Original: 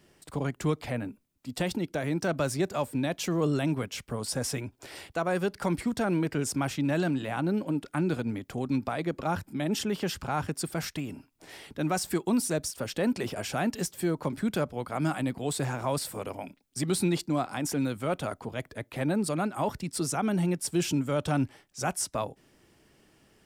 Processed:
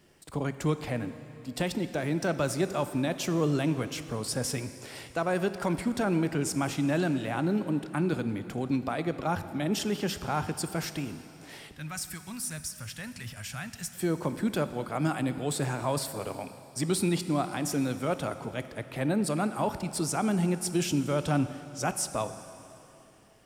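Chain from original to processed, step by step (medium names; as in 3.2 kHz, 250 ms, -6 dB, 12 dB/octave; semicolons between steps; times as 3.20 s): 11.71–13.95 s: FFT filter 120 Hz 0 dB, 380 Hz -26 dB, 1.7 kHz -3 dB, 3.9 kHz -5 dB, 9.6 kHz -1 dB; reverberation RT60 3.0 s, pre-delay 7 ms, DRR 11 dB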